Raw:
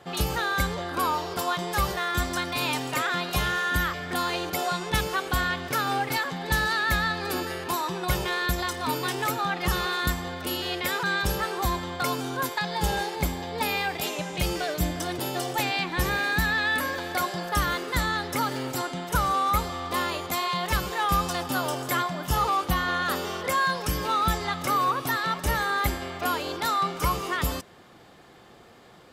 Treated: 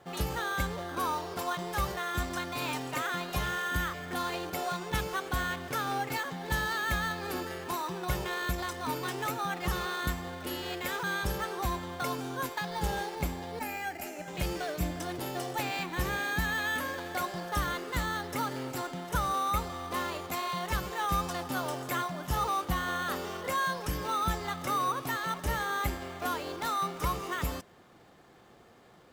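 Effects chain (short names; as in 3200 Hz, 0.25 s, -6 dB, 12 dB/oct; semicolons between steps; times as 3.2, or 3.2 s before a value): 13.59–14.28 fixed phaser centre 710 Hz, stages 8; in parallel at -5.5 dB: sample-and-hold 9×; on the sum: gain -9 dB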